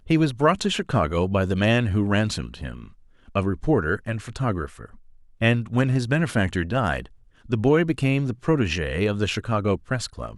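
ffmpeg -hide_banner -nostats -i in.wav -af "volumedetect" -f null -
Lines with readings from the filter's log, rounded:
mean_volume: -23.3 dB
max_volume: -5.9 dB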